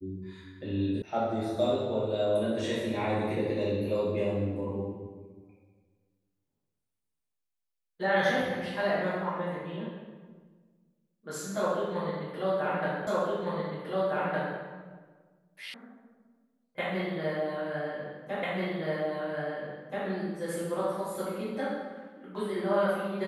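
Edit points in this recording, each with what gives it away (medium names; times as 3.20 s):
1.02 s: sound stops dead
13.07 s: repeat of the last 1.51 s
15.74 s: sound stops dead
18.43 s: repeat of the last 1.63 s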